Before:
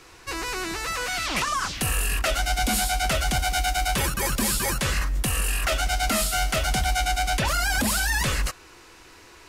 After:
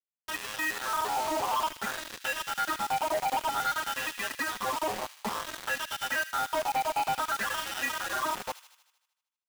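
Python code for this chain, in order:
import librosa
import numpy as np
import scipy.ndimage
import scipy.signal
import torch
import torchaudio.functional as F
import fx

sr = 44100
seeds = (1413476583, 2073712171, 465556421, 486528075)

p1 = fx.vocoder_arp(x, sr, chord='major triad', root=56, every_ms=116)
p2 = scipy.signal.sosfilt(scipy.signal.butter(6, 3400.0, 'lowpass', fs=sr, output='sos'), p1)
p3 = fx.dereverb_blind(p2, sr, rt60_s=0.87)
p4 = fx.highpass(p3, sr, hz=320.0, slope=6)
p5 = fx.low_shelf(p4, sr, hz=460.0, db=7.5)
p6 = fx.rider(p5, sr, range_db=3, speed_s=0.5)
p7 = p5 + F.gain(torch.from_numpy(p6), 1.5).numpy()
p8 = fx.sample_hold(p7, sr, seeds[0], rate_hz=2200.0, jitter_pct=0)
p9 = fx.wah_lfo(p8, sr, hz=0.55, low_hz=780.0, high_hz=2200.0, q=3.3)
p10 = fx.quant_dither(p9, sr, seeds[1], bits=6, dither='none')
p11 = np.clip(10.0 ** (26.5 / 20.0) * p10, -1.0, 1.0) / 10.0 ** (26.5 / 20.0)
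p12 = fx.echo_wet_highpass(p11, sr, ms=77, feedback_pct=60, hz=2300.0, wet_db=-10)
y = F.gain(torch.from_numpy(p12), 1.5).numpy()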